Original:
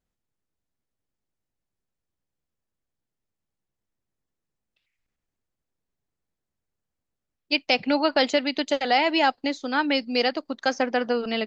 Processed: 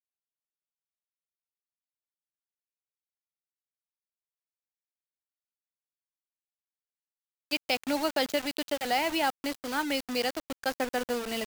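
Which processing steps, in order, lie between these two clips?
bit-crush 5-bit; gain -7 dB

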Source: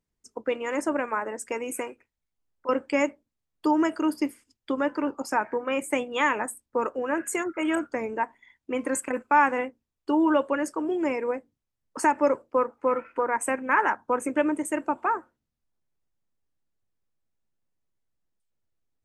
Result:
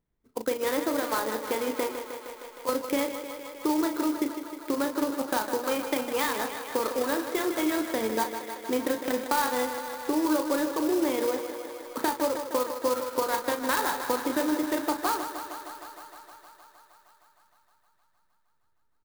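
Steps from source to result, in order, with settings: compressor, threshold -28 dBFS, peak gain reduction 12 dB; doubler 36 ms -8 dB; on a send: thinning echo 0.155 s, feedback 81%, high-pass 220 Hz, level -9 dB; on the sum: careless resampling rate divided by 8×, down filtered, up hold; clock jitter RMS 0.04 ms; gain +3.5 dB

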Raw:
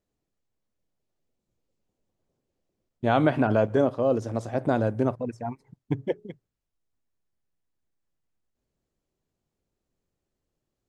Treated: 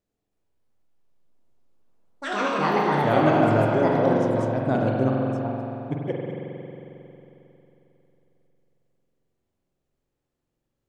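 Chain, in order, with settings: spring tank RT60 3.3 s, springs 45 ms, chirp 70 ms, DRR -2 dB; echoes that change speed 0.315 s, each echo +5 st, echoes 3; gain -2 dB

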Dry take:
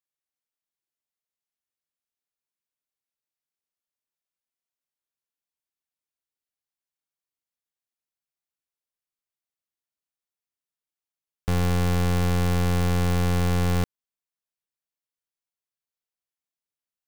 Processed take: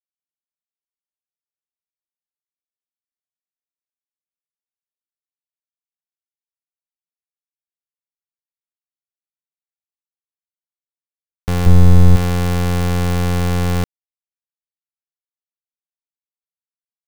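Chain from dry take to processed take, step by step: 11.66–12.16 tilt -3 dB/oct; bit-crush 6-bit; gain +4 dB

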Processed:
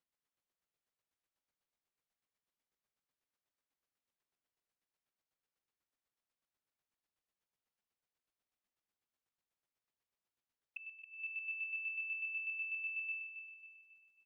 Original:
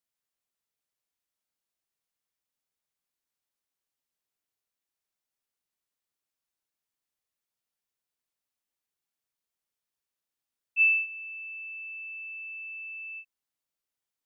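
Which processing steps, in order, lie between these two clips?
LPF 2500 Hz 6 dB/oct; flipped gate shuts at -36 dBFS, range -25 dB; chopper 8.1 Hz, depth 60%, duty 25%; feedback echo 0.272 s, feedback 45%, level -9 dB; gain +3.5 dB

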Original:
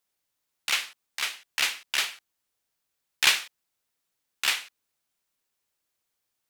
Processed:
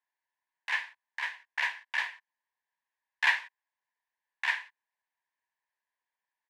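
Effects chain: harmoniser -4 st -7 dB; double band-pass 1300 Hz, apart 0.82 oct; gain +4.5 dB

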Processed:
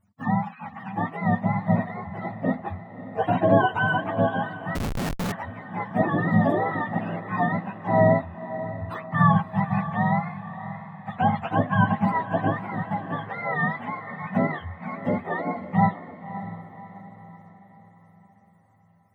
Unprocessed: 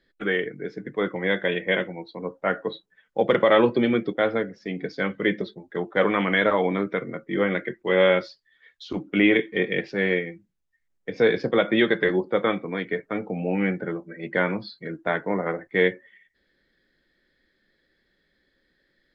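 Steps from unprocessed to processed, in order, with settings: spectrum mirrored in octaves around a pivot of 600 Hz; diffused feedback echo 0.578 s, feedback 47%, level -12.5 dB; 4.75–5.32 Schmitt trigger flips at -28.5 dBFS

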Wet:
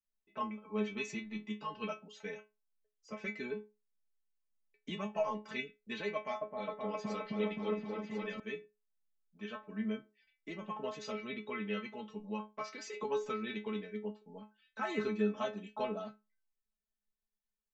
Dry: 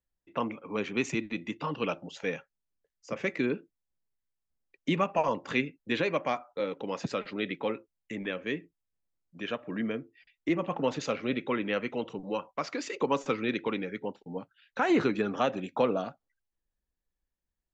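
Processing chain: metallic resonator 210 Hz, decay 0.25 s, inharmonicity 0.002; 6.15–8.4 repeats that get brighter 0.262 s, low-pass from 750 Hz, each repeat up 1 oct, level 0 dB; gain +3.5 dB

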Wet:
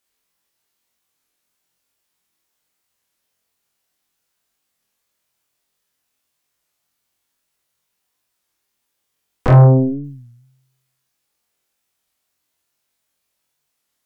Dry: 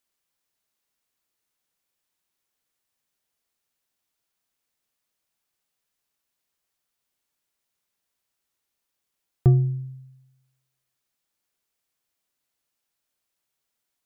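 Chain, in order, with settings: in parallel at +3 dB: compressor, threshold -26 dBFS, peak gain reduction 13 dB; on the sum: wavefolder -11.5 dBFS; 9.47–10.05 LPF 1100 Hz 24 dB/oct; on a send: flutter echo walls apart 3.9 m, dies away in 0.41 s; on the sum: soft clip -8.5 dBFS, distortion -15 dB; added harmonics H 3 -8 dB, 4 -10 dB, 7 -31 dB, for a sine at -8.5 dBFS; record warp 33 1/3 rpm, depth 160 cents; gain +5 dB

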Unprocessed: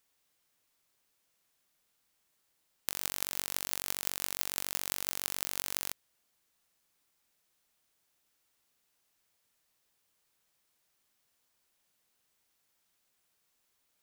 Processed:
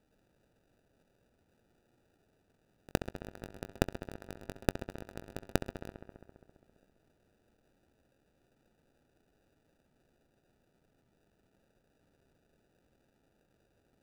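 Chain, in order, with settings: dynamic EQ 1800 Hz, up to +7 dB, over -59 dBFS, Q 0.73; level quantiser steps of 16 dB; sample-and-hold 41×; on a send: darkening echo 67 ms, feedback 82%, low-pass 4300 Hz, level -12.5 dB; on the sum: gain +7 dB

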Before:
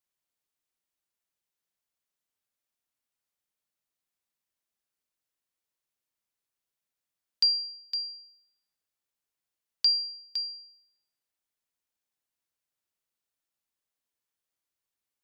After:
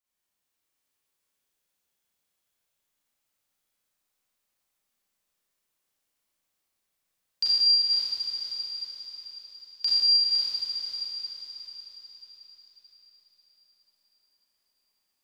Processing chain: diffused feedback echo 0.489 s, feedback 50%, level -3.5 dB; Schroeder reverb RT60 2.7 s, combs from 30 ms, DRR -10 dB; gain -4 dB

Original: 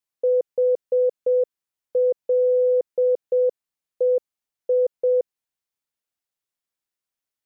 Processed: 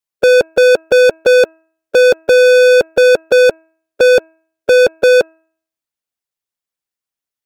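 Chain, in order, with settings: harmonic-percussive split percussive +5 dB; sample leveller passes 5; de-hum 322.4 Hz, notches 8; gain +7.5 dB

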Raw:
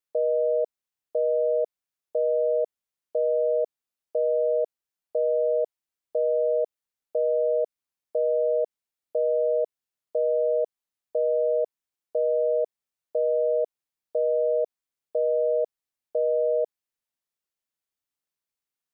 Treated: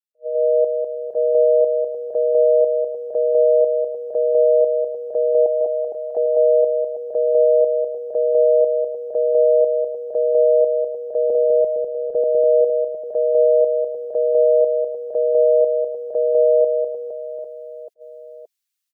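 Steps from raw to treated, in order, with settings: per-bin expansion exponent 1.5; 5.46–6.17 elliptic high-pass 680 Hz; 11.3–12.24 tilt -5 dB/oct; AGC gain up to 16 dB; limiter -8.5 dBFS, peak gain reduction 7 dB; on a send: reverse bouncing-ball echo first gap 0.2 s, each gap 1.3×, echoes 5; on the sum: attack slew limiter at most 480 dB/s; gain -4 dB

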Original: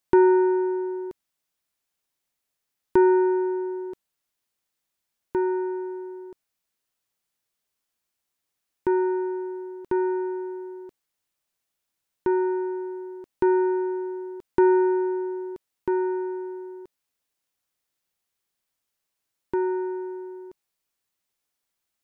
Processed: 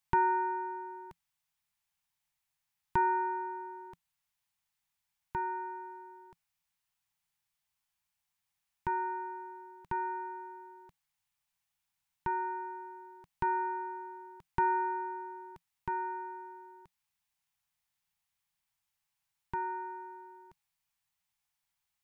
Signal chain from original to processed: EQ curve 170 Hz 0 dB, 300 Hz -22 dB, 510 Hz -18 dB, 840 Hz 0 dB, 1300 Hz -4 dB, 2300 Hz -1 dB, 4300 Hz -4 dB

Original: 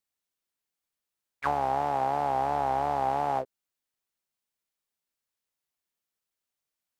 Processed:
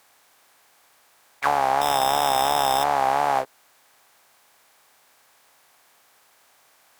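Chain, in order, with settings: per-bin compression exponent 0.6; tilt +2.5 dB/oct; 1.81–2.84 sample-rate reducer 4400 Hz, jitter 0%; gain +5.5 dB

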